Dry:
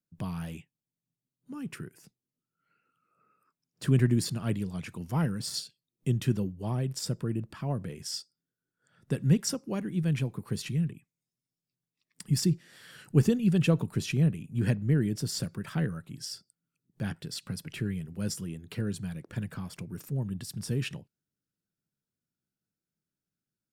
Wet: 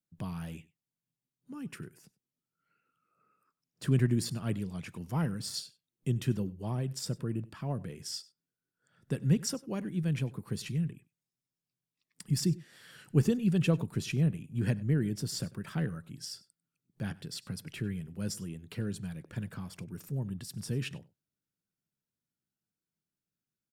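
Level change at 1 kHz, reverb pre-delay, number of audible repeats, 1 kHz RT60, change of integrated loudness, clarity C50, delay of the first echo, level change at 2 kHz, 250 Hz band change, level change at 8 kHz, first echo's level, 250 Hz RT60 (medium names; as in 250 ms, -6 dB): -3.0 dB, no reverb, 1, no reverb, -3.0 dB, no reverb, 97 ms, -3.0 dB, -3.0 dB, -3.0 dB, -21.5 dB, no reverb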